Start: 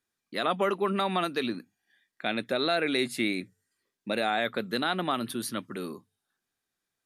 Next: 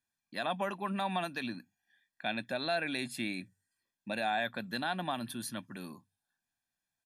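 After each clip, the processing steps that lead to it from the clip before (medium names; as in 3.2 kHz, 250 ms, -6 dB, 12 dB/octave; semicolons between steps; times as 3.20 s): comb 1.2 ms, depth 70%; trim -7 dB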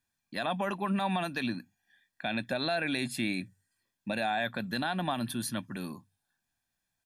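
bass shelf 120 Hz +8 dB; peak limiter -25 dBFS, peak gain reduction 5.5 dB; trim +4.5 dB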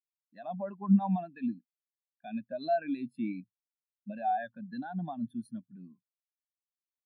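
spectral contrast expander 2.5:1; trim +5.5 dB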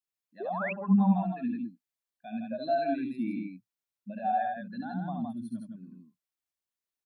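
loudspeakers at several distances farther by 24 m -4 dB, 56 m -4 dB; painted sound rise, 0.40–0.73 s, 350–2800 Hz -35 dBFS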